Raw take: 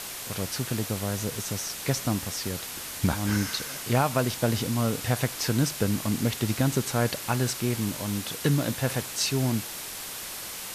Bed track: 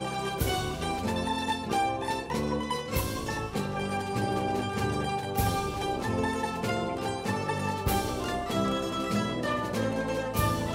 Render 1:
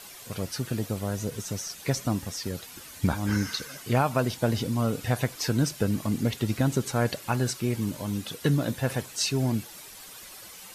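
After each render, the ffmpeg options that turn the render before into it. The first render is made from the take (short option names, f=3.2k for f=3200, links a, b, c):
-af "afftdn=nr=11:nf=-37"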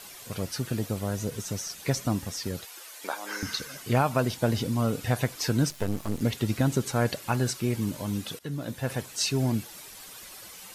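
-filter_complex "[0:a]asettb=1/sr,asplit=3[a][b][c];[a]atrim=end=2.654[d];[b]atrim=start=2.65:end=3.43,asetpts=PTS-STARTPTS,afade=t=in:d=0.004:c=qsin,afade=t=out:st=0.776:d=0.004:c=qsin,highpass=f=440:w=0.5412,highpass=f=440:w=1.3066[e];[c]atrim=start=3.426[f];[d][e]acrossfade=d=0.004:c1=hsin:c2=qsin[g];[g][f]acrossfade=d=0.004:c1=qsin:c2=hsin,asettb=1/sr,asplit=3[h][i][j];[h]atrim=end=5.704[k];[i]atrim=start=5.7:end=6.21,asetpts=PTS-STARTPTS,afade=t=in:d=0.004:c=qsin,afade=t=out:st=0.506:d=0.004:c=qsin,aeval=exprs='max(val(0),0)':c=same[l];[j]atrim=start=6.206[m];[k][l]acrossfade=d=0.004:c1=hsin:c2=qsin[n];[n][m]acrossfade=d=0.004:c1=qsin:c2=hsin,asplit=2[o][p];[o]atrim=end=8.39,asetpts=PTS-STARTPTS,afade=t=out:st=8.386:d=0.004:c=hsin:silence=0.133352[q];[p]atrim=start=8.39,asetpts=PTS-STARTPTS,afade=t=in:d=1.01:c=qsin:silence=0.133352[r];[q][r]concat=n=2:v=0:a=1"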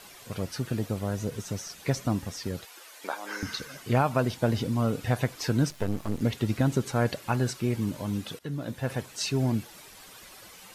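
-af "highshelf=f=4.5k:g=-7"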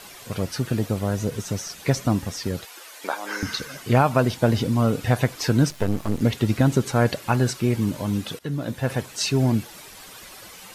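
-af "volume=6dB"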